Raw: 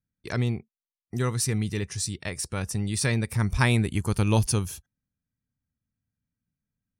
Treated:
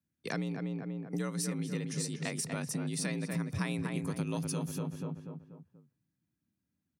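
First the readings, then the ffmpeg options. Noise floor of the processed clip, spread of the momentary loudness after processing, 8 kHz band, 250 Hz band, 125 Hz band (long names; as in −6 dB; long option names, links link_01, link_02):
−85 dBFS, 7 LU, −8.0 dB, −5.0 dB, −11.0 dB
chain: -filter_complex "[0:a]asplit=2[link_01][link_02];[link_02]adelay=242,lowpass=frequency=1900:poles=1,volume=-5dB,asplit=2[link_03][link_04];[link_04]adelay=242,lowpass=frequency=1900:poles=1,volume=0.43,asplit=2[link_05][link_06];[link_06]adelay=242,lowpass=frequency=1900:poles=1,volume=0.43,asplit=2[link_07][link_08];[link_08]adelay=242,lowpass=frequency=1900:poles=1,volume=0.43,asplit=2[link_09][link_10];[link_10]adelay=242,lowpass=frequency=1900:poles=1,volume=0.43[link_11];[link_01][link_03][link_05][link_07][link_09][link_11]amix=inputs=6:normalize=0,acompressor=threshold=-32dB:ratio=6,afreqshift=55"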